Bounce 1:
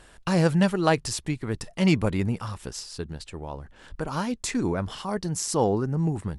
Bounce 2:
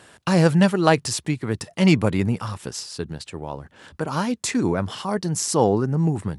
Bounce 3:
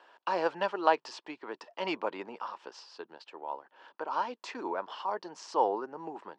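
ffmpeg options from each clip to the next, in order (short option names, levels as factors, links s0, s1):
-af "highpass=f=88:w=0.5412,highpass=f=88:w=1.3066,volume=1.68"
-af "highpass=f=380:w=0.5412,highpass=f=380:w=1.3066,equalizer=f=430:t=q:w=4:g=-3,equalizer=f=940:t=q:w=4:g=9,equalizer=f=2100:t=q:w=4:g=-6,equalizer=f=3800:t=q:w=4:g=-6,lowpass=f=4300:w=0.5412,lowpass=f=4300:w=1.3066,volume=0.376"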